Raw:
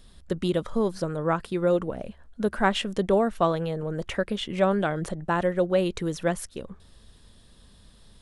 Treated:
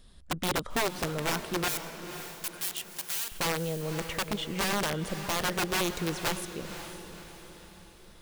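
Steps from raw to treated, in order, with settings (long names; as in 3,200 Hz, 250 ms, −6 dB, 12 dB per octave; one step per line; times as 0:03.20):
wrap-around overflow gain 19.5 dB
0:01.68–0:03.32: first-order pre-emphasis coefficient 0.97
feedback delay with all-pass diffusion 529 ms, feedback 47%, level −10 dB
level −3.5 dB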